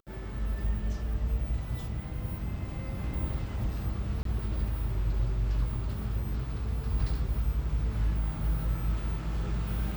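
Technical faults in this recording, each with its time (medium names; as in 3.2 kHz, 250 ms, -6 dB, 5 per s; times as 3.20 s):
4.23–4.25 s: dropout 23 ms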